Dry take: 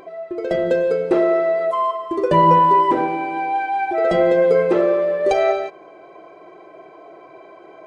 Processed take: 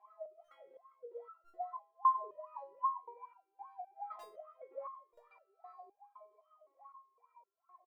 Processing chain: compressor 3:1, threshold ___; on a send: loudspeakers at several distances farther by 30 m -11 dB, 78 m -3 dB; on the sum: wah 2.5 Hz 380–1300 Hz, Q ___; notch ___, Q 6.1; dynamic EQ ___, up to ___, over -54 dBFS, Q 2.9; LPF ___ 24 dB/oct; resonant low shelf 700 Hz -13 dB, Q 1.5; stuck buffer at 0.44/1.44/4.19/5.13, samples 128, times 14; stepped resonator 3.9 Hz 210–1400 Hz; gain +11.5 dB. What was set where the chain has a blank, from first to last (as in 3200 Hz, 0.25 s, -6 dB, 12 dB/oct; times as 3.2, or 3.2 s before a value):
-22 dBFS, 20, 1500 Hz, 290 Hz, -7 dB, 5700 Hz